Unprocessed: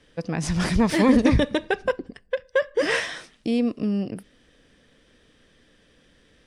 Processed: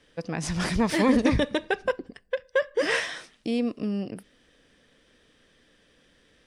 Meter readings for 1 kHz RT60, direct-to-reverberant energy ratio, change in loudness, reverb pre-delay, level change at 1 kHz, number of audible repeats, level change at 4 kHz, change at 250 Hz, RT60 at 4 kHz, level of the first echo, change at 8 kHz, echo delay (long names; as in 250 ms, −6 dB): no reverb audible, no reverb audible, −3.5 dB, no reverb audible, −2.0 dB, no echo audible, −1.5 dB, −4.0 dB, no reverb audible, no echo audible, −1.5 dB, no echo audible